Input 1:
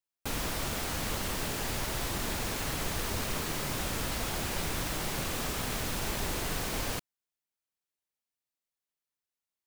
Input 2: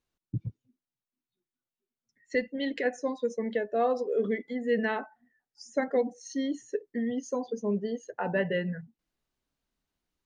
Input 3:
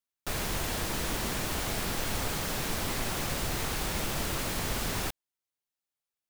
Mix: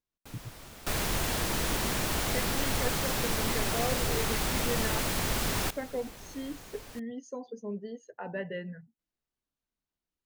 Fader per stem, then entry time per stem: -14.5, -8.0, +2.0 dB; 0.00, 0.00, 0.60 s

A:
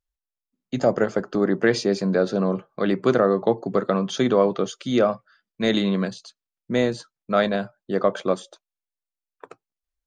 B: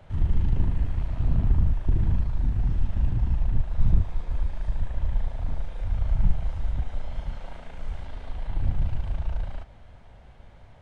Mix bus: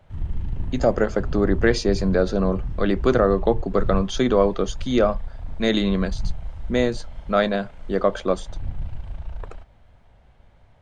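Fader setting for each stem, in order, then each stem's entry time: +0.5, -4.5 dB; 0.00, 0.00 s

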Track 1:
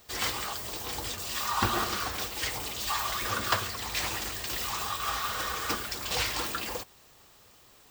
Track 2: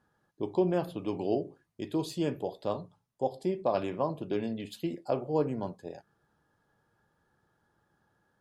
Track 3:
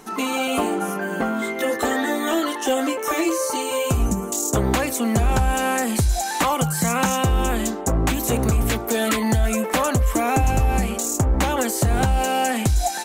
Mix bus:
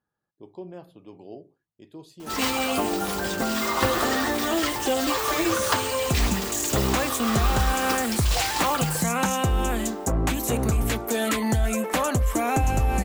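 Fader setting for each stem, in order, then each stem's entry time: +2.5, -12.0, -3.5 dB; 2.20, 0.00, 2.20 s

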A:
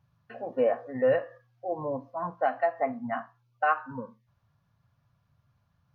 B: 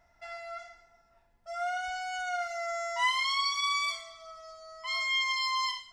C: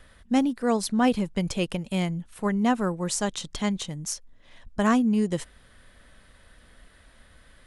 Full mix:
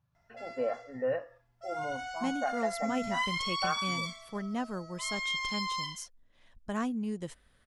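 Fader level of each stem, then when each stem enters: -7.5, -4.5, -11.5 dB; 0.00, 0.15, 1.90 s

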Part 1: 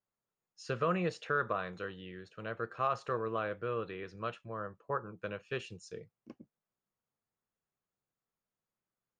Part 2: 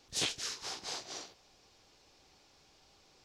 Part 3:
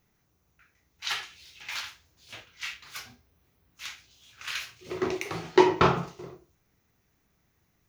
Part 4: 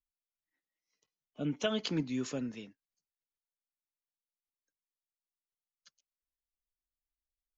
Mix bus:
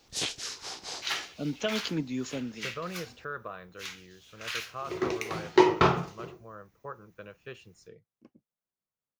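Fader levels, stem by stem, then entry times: -6.0, +1.5, -1.0, +1.5 dB; 1.95, 0.00, 0.00, 0.00 s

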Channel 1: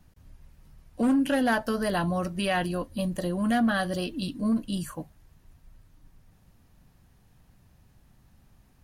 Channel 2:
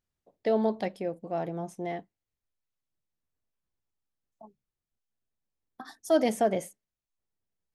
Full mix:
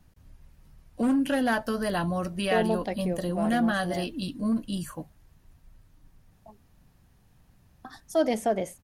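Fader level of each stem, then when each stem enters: -1.0, -0.5 dB; 0.00, 2.05 s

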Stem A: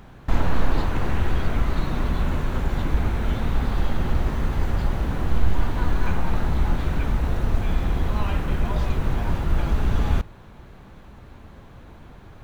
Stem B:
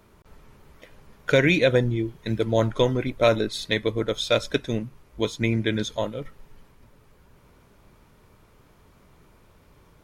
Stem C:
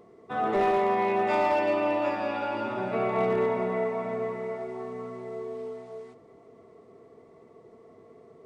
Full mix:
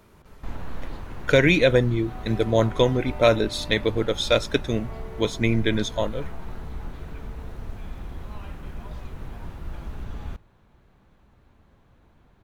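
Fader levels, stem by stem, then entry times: -13.5, +1.5, -16.5 dB; 0.15, 0.00, 1.75 s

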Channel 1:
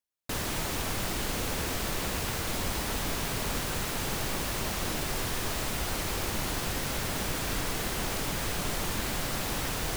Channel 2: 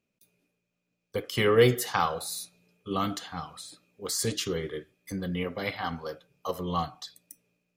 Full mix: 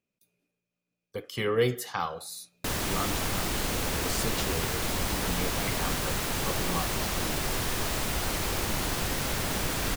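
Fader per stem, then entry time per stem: +2.0, -5.0 dB; 2.35, 0.00 s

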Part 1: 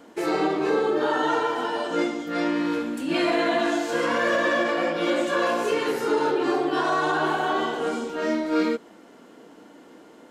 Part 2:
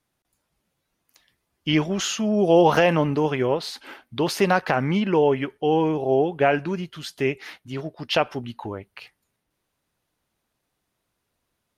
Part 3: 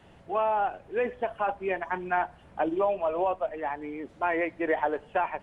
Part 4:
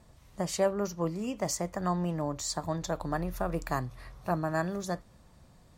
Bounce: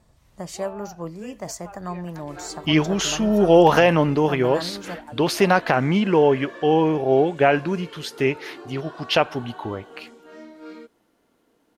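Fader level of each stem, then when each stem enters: -17.5, +2.5, -15.0, -1.5 dB; 2.10, 1.00, 0.25, 0.00 s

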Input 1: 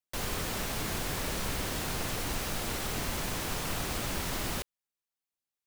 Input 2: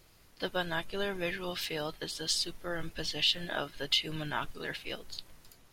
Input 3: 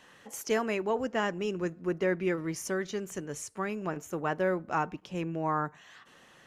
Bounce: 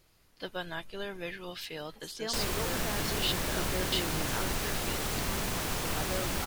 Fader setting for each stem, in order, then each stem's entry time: +1.0, -4.5, -10.0 dB; 2.20, 0.00, 1.70 s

